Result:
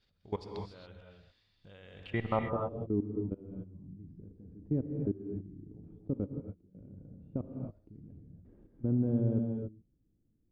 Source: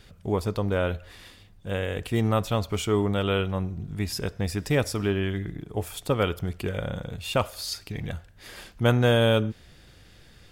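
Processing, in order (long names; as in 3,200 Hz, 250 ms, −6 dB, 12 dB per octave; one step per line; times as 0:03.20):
running median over 3 samples
output level in coarse steps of 23 dB
low-pass filter sweep 4,600 Hz → 280 Hz, 0:01.97–0:02.65
reverb whose tail is shaped and stops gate 310 ms rising, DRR 2.5 dB
0:06.26–0:06.75: expander for the loud parts 2.5 to 1, over −36 dBFS
level −7.5 dB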